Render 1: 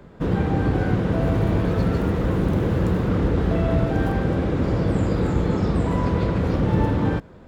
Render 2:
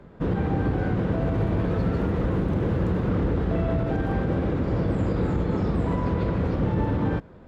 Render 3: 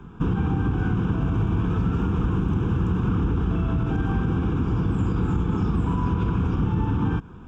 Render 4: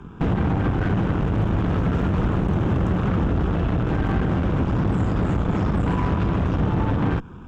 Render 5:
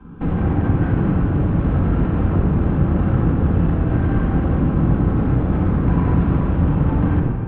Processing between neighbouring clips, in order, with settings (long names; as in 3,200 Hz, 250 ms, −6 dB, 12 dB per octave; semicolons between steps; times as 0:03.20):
low-pass filter 3,000 Hz 6 dB per octave; brickwall limiter −13.5 dBFS, peak gain reduction 5.5 dB; level −2 dB
downward compressor, threshold −25 dBFS, peak gain reduction 6 dB; phaser with its sweep stopped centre 2,900 Hz, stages 8; level +7.5 dB
harmonic generator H 5 −23 dB, 8 −15 dB, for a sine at −11.5 dBFS
high-frequency loss of the air 400 metres; convolution reverb RT60 2.0 s, pre-delay 4 ms, DRR −8.5 dB; level −7.5 dB